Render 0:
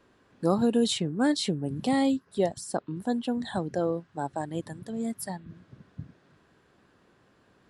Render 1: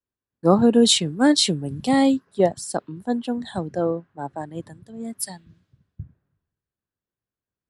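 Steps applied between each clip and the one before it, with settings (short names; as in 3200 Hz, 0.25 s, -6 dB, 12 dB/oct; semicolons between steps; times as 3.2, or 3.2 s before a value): three-band expander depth 100%; gain +4 dB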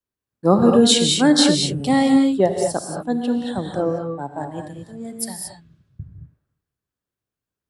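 non-linear reverb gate 0.25 s rising, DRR 2.5 dB; gain +1 dB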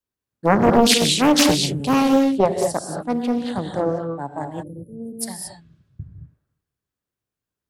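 spectral delete 4.63–5.21, 590–9300 Hz; Doppler distortion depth 0.79 ms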